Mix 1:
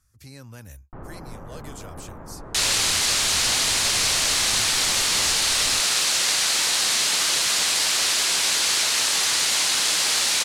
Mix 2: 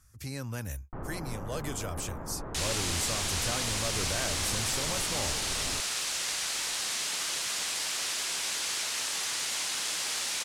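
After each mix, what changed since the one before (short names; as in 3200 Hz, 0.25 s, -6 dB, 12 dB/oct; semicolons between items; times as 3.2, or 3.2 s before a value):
speech +5.5 dB; second sound -10.5 dB; master: add bell 4200 Hz -3 dB 0.37 oct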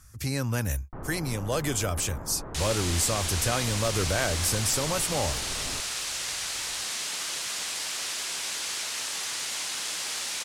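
speech +8.5 dB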